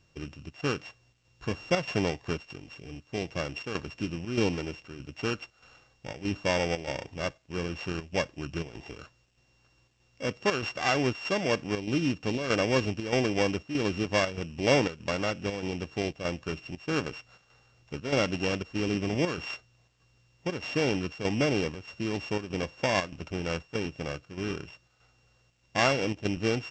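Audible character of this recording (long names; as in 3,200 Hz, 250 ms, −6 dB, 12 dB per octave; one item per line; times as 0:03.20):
a buzz of ramps at a fixed pitch in blocks of 16 samples
chopped level 1.6 Hz, depth 60%, duty 80%
A-law companding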